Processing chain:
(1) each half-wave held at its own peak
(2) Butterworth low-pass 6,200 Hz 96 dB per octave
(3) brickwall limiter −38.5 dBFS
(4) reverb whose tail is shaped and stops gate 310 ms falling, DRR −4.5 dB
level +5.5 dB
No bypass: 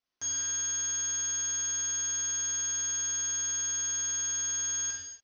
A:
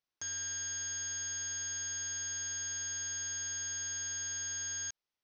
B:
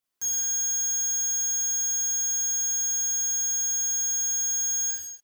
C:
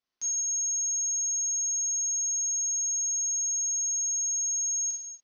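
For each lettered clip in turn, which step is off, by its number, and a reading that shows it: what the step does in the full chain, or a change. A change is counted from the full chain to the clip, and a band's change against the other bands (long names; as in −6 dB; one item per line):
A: 4, 1 kHz band −7.5 dB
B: 2, change in integrated loudness +5.5 LU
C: 1, distortion level −7 dB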